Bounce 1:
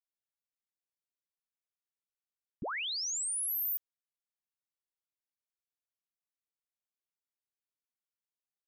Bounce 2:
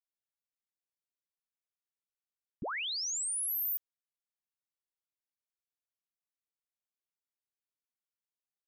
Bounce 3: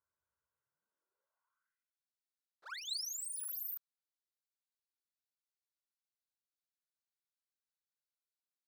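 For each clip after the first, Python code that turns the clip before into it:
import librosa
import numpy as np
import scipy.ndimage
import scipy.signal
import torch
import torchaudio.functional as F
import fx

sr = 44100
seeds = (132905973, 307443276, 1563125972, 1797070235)

y1 = x
y2 = fx.lower_of_two(y1, sr, delay_ms=2.0)
y2 = fx.high_shelf_res(y2, sr, hz=2000.0, db=-13.0, q=3.0)
y2 = fx.filter_sweep_highpass(y2, sr, from_hz=70.0, to_hz=3900.0, start_s=0.47, end_s=2.0, q=3.8)
y2 = y2 * 10.0 ** (6.5 / 20.0)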